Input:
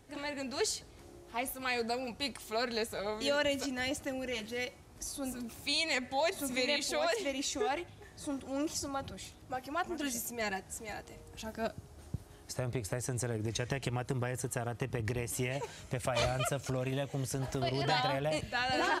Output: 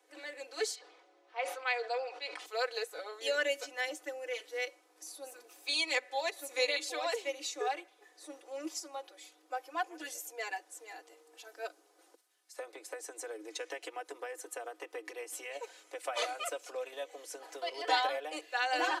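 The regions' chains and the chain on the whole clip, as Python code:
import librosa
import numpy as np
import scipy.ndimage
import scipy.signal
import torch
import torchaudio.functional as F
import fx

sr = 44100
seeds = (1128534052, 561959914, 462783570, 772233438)

y = fx.chain(x, sr, fx.bandpass_edges(low_hz=480.0, high_hz=3700.0),
    fx.sustainer(db_per_s=39.0), at=(0.75, 2.46))
y = fx.chain(y, sr, fx.highpass(hz=49.0, slope=24),
    fx.tone_stack(knobs='5-5-5'),
    fx.sustainer(db_per_s=120.0), at=(12.15, 12.58))
y = scipy.signal.sosfilt(scipy.signal.cheby1(8, 1.0, 310.0, 'highpass', fs=sr, output='sos'), y)
y = y + 0.81 * np.pad(y, (int(4.0 * sr / 1000.0), 0))[:len(y)]
y = fx.upward_expand(y, sr, threshold_db=-39.0, expansion=1.5)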